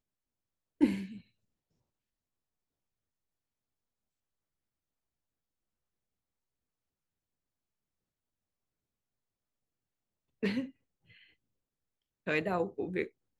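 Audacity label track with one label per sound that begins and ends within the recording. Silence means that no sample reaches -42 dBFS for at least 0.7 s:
0.810000	1.170000	sound
10.430000	10.660000	sound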